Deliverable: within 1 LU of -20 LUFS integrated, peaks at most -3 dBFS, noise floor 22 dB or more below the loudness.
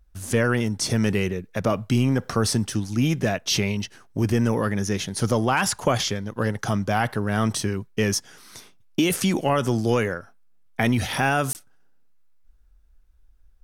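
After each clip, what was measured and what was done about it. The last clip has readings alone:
dropouts 1; longest dropout 19 ms; loudness -24.0 LUFS; peak level -7.5 dBFS; loudness target -20.0 LUFS
-> interpolate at 11.53 s, 19 ms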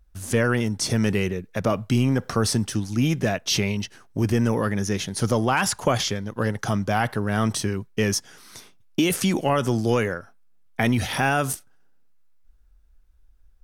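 dropouts 0; loudness -24.0 LUFS; peak level -7.5 dBFS; loudness target -20.0 LUFS
-> trim +4 dB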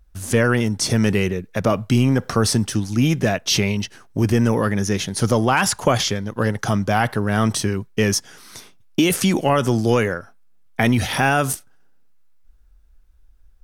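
loudness -20.0 LUFS; peak level -3.5 dBFS; noise floor -50 dBFS

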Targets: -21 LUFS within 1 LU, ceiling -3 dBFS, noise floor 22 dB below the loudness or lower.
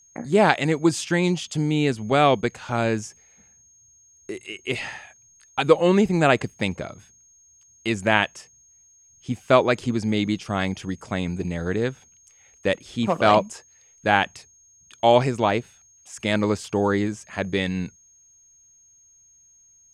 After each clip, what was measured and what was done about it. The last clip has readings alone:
steady tone 6.5 kHz; tone level -53 dBFS; loudness -22.5 LUFS; peak level -1.0 dBFS; loudness target -21.0 LUFS
-> band-stop 6.5 kHz, Q 30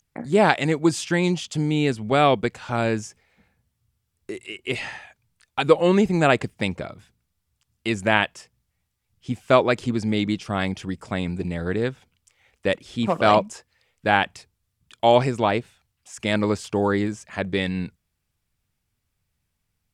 steady tone not found; loudness -22.5 LUFS; peak level -1.5 dBFS; loudness target -21.0 LUFS
-> trim +1.5 dB; peak limiter -3 dBFS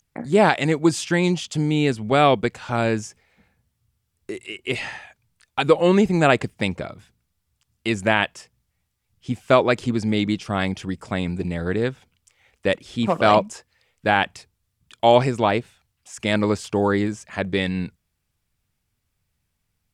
loudness -21.5 LUFS; peak level -3.0 dBFS; noise floor -75 dBFS

